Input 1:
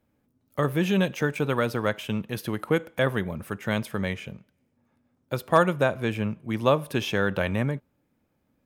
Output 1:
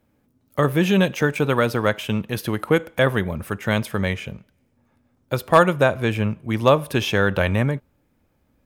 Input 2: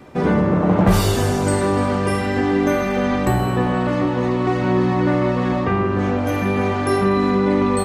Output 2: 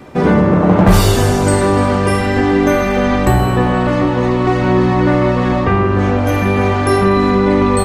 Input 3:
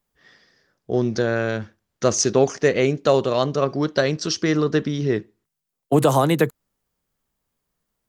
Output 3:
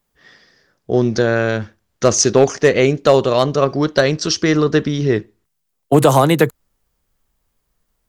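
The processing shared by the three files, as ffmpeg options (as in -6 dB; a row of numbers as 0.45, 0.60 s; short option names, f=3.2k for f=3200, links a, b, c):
-af "asubboost=boost=2.5:cutoff=90,asoftclip=type=hard:threshold=-8dB,volume=6dB"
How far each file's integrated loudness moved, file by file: +5.5, +5.5, +5.5 LU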